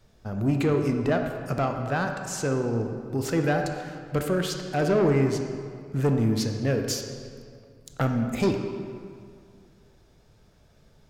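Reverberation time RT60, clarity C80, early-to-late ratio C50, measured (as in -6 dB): 2.2 s, 6.5 dB, 5.5 dB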